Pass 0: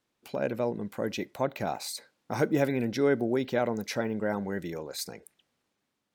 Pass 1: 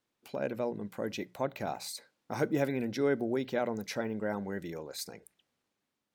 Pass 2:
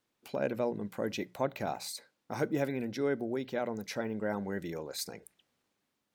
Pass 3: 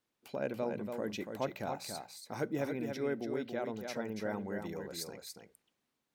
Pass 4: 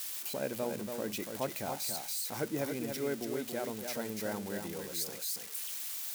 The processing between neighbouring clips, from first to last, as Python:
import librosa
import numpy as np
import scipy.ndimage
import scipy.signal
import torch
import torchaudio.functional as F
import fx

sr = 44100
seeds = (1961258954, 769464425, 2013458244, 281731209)

y1 = fx.hum_notches(x, sr, base_hz=60, count=3)
y1 = F.gain(torch.from_numpy(y1), -4.0).numpy()
y2 = fx.rider(y1, sr, range_db=4, speed_s=2.0)
y2 = F.gain(torch.from_numpy(y2), -1.0).numpy()
y3 = y2 + 10.0 ** (-6.0 / 20.0) * np.pad(y2, (int(284 * sr / 1000.0), 0))[:len(y2)]
y3 = F.gain(torch.from_numpy(y3), -4.0).numpy()
y4 = y3 + 0.5 * 10.0 ** (-31.5 / 20.0) * np.diff(np.sign(y3), prepend=np.sign(y3[:1]))